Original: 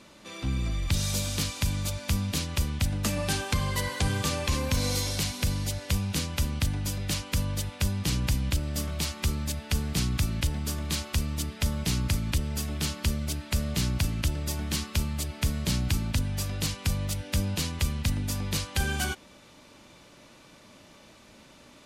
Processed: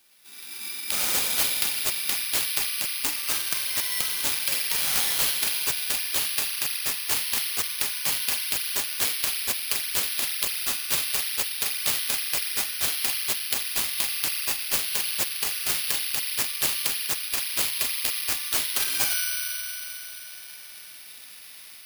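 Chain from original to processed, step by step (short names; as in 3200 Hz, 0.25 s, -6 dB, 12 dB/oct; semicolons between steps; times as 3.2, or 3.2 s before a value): high shelf 6800 Hz +12 dB; AGC gain up to 11.5 dB; ladder high-pass 1500 Hz, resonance 25%; spring tank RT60 4 s, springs 37 ms, chirp 40 ms, DRR -8.5 dB; careless resampling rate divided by 6×, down none, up zero stuff; gain -10 dB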